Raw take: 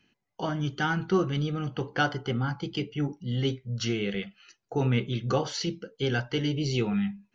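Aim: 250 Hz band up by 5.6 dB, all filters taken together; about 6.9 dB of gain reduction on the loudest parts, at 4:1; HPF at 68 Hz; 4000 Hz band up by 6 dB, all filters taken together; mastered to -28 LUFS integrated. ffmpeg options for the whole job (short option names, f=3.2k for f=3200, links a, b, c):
-af "highpass=68,equalizer=f=250:t=o:g=7.5,equalizer=f=4k:t=o:g=8.5,acompressor=threshold=-25dB:ratio=4,volume=2dB"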